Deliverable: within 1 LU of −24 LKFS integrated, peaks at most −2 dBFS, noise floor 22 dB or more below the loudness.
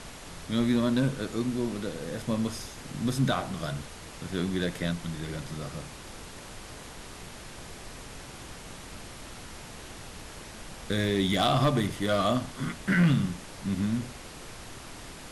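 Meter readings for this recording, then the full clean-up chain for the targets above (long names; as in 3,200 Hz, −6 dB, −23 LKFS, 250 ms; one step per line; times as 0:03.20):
share of clipped samples 0.3%; peaks flattened at −17.0 dBFS; background noise floor −45 dBFS; target noise floor −51 dBFS; integrated loudness −29.0 LKFS; sample peak −17.0 dBFS; target loudness −24.0 LKFS
→ clipped peaks rebuilt −17 dBFS
noise reduction from a noise print 6 dB
level +5 dB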